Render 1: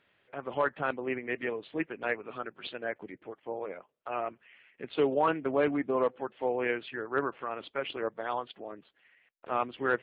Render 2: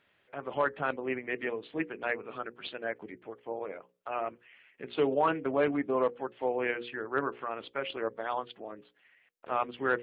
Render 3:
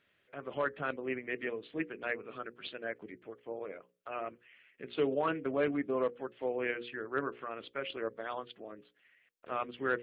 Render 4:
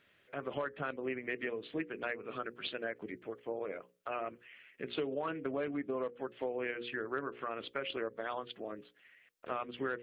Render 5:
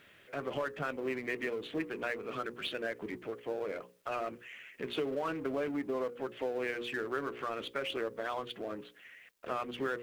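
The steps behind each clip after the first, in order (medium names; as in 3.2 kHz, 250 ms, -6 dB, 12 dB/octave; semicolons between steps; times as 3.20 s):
hum notches 60/120/180/240/300/360/420/480/540 Hz
peaking EQ 860 Hz -8 dB 0.57 oct; trim -2.5 dB
compression 6:1, threshold -38 dBFS, peak gain reduction 12 dB; trim +4.5 dB
companding laws mixed up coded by mu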